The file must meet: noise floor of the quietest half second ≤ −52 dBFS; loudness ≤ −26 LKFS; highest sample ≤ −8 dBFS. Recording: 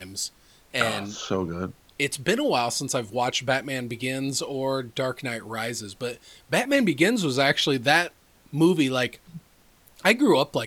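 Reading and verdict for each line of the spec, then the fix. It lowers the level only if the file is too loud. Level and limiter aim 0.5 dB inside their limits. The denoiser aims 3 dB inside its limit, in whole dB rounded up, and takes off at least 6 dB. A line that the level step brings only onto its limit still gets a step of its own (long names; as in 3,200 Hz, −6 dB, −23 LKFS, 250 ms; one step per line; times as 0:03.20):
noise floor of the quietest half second −57 dBFS: in spec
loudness −24.5 LKFS: out of spec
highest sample −4.0 dBFS: out of spec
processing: level −2 dB
brickwall limiter −8.5 dBFS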